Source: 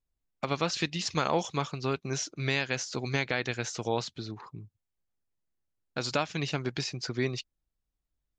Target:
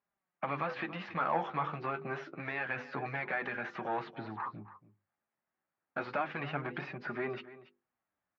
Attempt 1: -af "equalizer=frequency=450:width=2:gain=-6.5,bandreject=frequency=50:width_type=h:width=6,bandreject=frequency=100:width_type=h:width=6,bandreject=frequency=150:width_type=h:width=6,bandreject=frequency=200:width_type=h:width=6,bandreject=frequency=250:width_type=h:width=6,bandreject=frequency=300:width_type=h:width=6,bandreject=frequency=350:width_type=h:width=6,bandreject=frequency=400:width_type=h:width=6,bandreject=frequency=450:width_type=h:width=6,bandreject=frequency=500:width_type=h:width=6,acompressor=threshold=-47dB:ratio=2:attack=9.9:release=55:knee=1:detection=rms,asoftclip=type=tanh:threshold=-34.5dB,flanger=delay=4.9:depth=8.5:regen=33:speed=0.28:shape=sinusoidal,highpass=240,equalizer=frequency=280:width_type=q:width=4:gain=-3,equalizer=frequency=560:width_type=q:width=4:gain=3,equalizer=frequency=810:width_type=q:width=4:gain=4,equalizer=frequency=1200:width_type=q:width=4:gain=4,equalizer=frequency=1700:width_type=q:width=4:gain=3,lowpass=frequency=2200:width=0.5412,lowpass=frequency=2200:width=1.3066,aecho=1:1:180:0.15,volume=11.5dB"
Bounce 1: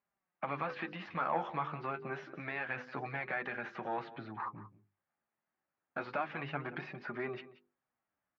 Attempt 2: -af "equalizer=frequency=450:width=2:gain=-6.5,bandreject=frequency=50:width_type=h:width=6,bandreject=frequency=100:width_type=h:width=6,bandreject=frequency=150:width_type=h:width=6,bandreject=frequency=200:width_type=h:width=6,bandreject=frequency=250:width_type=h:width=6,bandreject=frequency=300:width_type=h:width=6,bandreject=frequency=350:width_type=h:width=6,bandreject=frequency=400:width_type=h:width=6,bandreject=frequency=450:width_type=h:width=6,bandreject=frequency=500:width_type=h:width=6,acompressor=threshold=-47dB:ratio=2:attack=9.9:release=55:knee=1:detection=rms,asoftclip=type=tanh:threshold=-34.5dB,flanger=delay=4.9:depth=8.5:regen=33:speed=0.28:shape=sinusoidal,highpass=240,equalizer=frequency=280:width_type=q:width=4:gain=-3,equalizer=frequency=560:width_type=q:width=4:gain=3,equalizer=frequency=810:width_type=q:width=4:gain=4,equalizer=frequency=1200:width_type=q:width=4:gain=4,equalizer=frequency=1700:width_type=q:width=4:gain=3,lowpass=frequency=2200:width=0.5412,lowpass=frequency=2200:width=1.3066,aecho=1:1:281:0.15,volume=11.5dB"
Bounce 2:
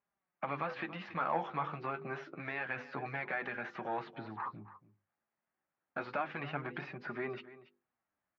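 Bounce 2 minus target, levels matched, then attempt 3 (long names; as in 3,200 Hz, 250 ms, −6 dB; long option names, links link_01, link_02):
downward compressor: peak gain reduction +4 dB
-af "equalizer=frequency=450:width=2:gain=-6.5,bandreject=frequency=50:width_type=h:width=6,bandreject=frequency=100:width_type=h:width=6,bandreject=frequency=150:width_type=h:width=6,bandreject=frequency=200:width_type=h:width=6,bandreject=frequency=250:width_type=h:width=6,bandreject=frequency=300:width_type=h:width=6,bandreject=frequency=350:width_type=h:width=6,bandreject=frequency=400:width_type=h:width=6,bandreject=frequency=450:width_type=h:width=6,bandreject=frequency=500:width_type=h:width=6,acompressor=threshold=-39.5dB:ratio=2:attack=9.9:release=55:knee=1:detection=rms,asoftclip=type=tanh:threshold=-34.5dB,flanger=delay=4.9:depth=8.5:regen=33:speed=0.28:shape=sinusoidal,highpass=240,equalizer=frequency=280:width_type=q:width=4:gain=-3,equalizer=frequency=560:width_type=q:width=4:gain=3,equalizer=frequency=810:width_type=q:width=4:gain=4,equalizer=frequency=1200:width_type=q:width=4:gain=4,equalizer=frequency=1700:width_type=q:width=4:gain=3,lowpass=frequency=2200:width=0.5412,lowpass=frequency=2200:width=1.3066,aecho=1:1:281:0.15,volume=11.5dB"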